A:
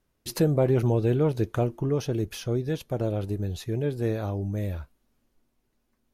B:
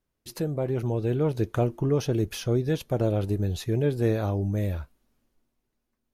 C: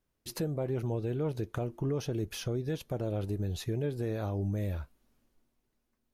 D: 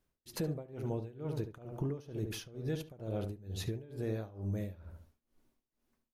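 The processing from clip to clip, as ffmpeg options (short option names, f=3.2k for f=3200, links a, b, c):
-af "dynaudnorm=f=280:g=9:m=10.5dB,volume=-7dB"
-af "alimiter=limit=-24dB:level=0:latency=1:release=428"
-filter_complex "[0:a]asplit=2[a][b];[b]adelay=72,lowpass=f=1.8k:p=1,volume=-7dB,asplit=2[c][d];[d]adelay=72,lowpass=f=1.8k:p=1,volume=0.39,asplit=2[e][f];[f]adelay=72,lowpass=f=1.8k:p=1,volume=0.39,asplit=2[g][h];[h]adelay=72,lowpass=f=1.8k:p=1,volume=0.39,asplit=2[i][j];[j]adelay=72,lowpass=f=1.8k:p=1,volume=0.39[k];[a][c][e][g][i][k]amix=inputs=6:normalize=0,acompressor=threshold=-35dB:ratio=2,tremolo=f=2.2:d=0.9,volume=1.5dB"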